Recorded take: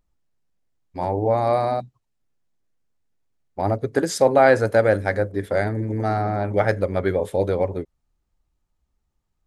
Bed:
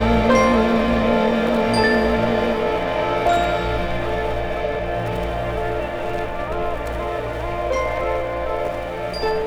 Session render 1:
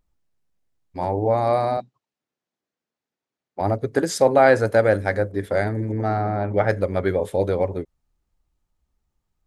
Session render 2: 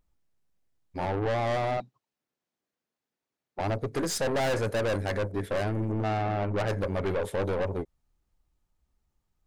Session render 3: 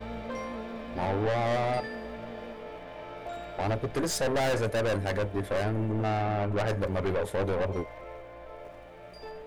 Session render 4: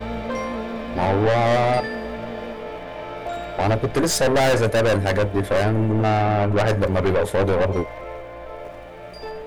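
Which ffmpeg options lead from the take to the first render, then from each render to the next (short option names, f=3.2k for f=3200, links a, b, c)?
-filter_complex "[0:a]asettb=1/sr,asplit=3[a][b][c];[a]atrim=end=1.774[d];[b]atrim=start=1.77:end=3.61,asetpts=PTS-STARTPTS,afade=t=in:d=0.004:c=qsin,afade=t=out:st=1.836:d=0.004:c=qsin,highpass=230,lowpass=6k[e];[c]atrim=start=3.606[f];[d][e]acrossfade=d=0.004:c1=hsin:c2=qsin[g];[g][f]acrossfade=d=0.004:c1=qsin:c2=hsin,asettb=1/sr,asplit=3[h][i][j];[h]atrim=end=5.924[k];[i]atrim=start=5.92:end=6.7,asetpts=PTS-STARTPTS,afade=t=in:d=0.004:c=qsin,afade=t=out:st=0.776:d=0.004:c=qsin,lowpass=f=3k:p=1[l];[j]atrim=start=6.696[m];[k][l]acrossfade=d=0.004:c1=hsin:c2=qsin[n];[n][m]acrossfade=d=0.004:c1=qsin:c2=hsin"
-af "aeval=exprs='(tanh(17.8*val(0)+0.4)-tanh(0.4))/17.8':c=same"
-filter_complex "[1:a]volume=-21.5dB[a];[0:a][a]amix=inputs=2:normalize=0"
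-af "volume=9.5dB"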